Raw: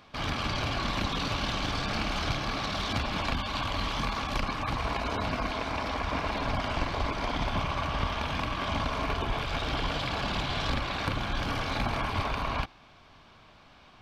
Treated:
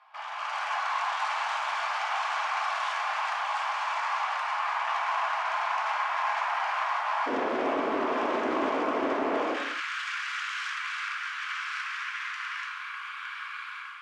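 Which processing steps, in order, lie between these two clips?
spectral gate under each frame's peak -25 dB strong; echo whose repeats swap between lows and highs 456 ms, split 1.2 kHz, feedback 87%, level -8 dB; wavefolder -28.5 dBFS; short-mantissa float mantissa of 2-bit; tilt EQ -4.5 dB/octave; level rider; steep high-pass 780 Hz 48 dB/octave, from 7.26 s 270 Hz, from 9.52 s 1.3 kHz; peak limiter -22.5 dBFS, peak gain reduction 9.5 dB; low-pass 7.2 kHz 12 dB/octave; peaking EQ 3.9 kHz -7.5 dB 0.68 oct; gated-style reverb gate 300 ms falling, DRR 0 dB; loudspeaker Doppler distortion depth 0.11 ms

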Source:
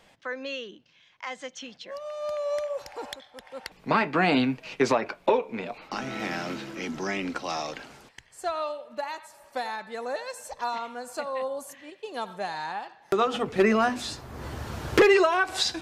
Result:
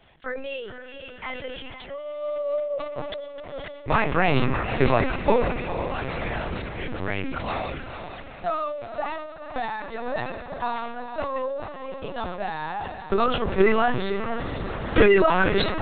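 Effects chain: echo that smears into a reverb 480 ms, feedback 51%, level -8 dB; LPC vocoder at 8 kHz pitch kept; decay stretcher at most 47 dB/s; trim +2 dB

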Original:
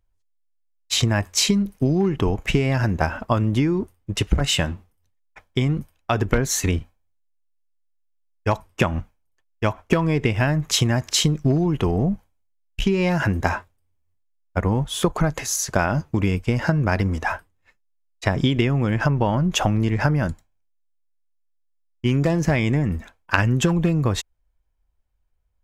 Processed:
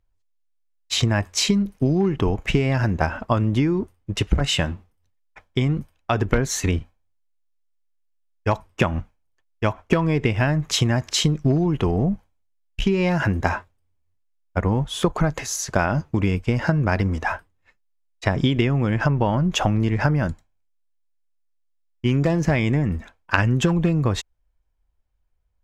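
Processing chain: treble shelf 10 kHz -11.5 dB

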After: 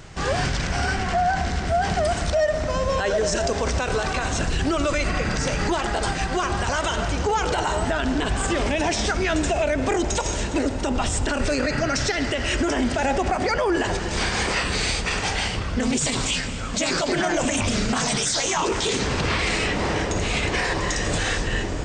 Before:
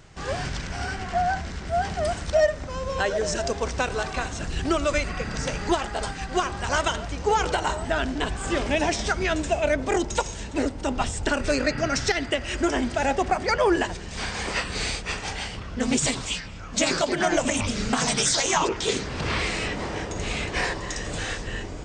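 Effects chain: reverberation RT60 3.8 s, pre-delay 39 ms, DRR 15 dB; peak limiter -22 dBFS, peak gain reduction 11 dB; trim +8 dB

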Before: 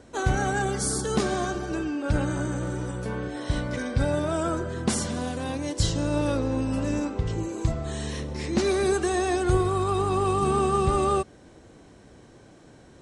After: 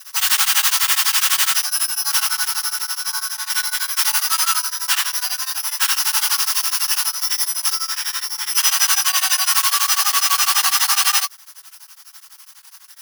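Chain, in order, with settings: one-sided wavefolder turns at -21 dBFS; careless resampling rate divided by 8×, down none, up zero stuff; treble shelf 4.2 kHz -4.5 dB, from 1.62 s -10.5 dB; integer overflow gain 10.5 dB; bit crusher 6-bit; brick-wall FIR high-pass 770 Hz; dynamic bell 2.9 kHz, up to +4 dB, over -40 dBFS, Q 3.2; reverberation, pre-delay 3 ms, DRR -13.5 dB; tremolo of two beating tones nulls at 12 Hz; trim -5 dB

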